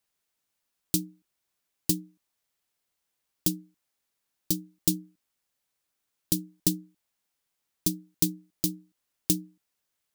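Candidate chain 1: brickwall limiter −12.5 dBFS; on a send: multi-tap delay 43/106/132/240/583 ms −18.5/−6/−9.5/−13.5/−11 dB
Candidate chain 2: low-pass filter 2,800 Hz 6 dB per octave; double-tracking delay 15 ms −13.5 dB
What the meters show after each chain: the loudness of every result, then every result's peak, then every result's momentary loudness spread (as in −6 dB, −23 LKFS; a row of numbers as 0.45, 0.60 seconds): −33.5, −35.0 LKFS; −12.5, −11.5 dBFS; 14, 8 LU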